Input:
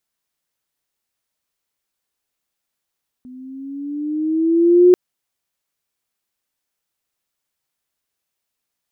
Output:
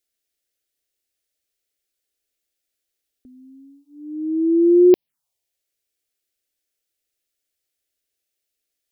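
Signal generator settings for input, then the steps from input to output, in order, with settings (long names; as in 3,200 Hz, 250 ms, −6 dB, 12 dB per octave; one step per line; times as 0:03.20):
pitch glide with a swell sine, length 1.69 s, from 250 Hz, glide +6.5 semitones, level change +30 dB, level −5 dB
phaser swept by the level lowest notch 170 Hz, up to 1,400 Hz, full sweep at −13.5 dBFS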